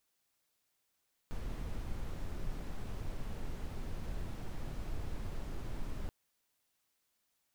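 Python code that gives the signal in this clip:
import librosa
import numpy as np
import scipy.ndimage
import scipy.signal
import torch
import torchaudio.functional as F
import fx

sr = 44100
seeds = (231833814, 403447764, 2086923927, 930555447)

y = fx.noise_colour(sr, seeds[0], length_s=4.78, colour='brown', level_db=-38.0)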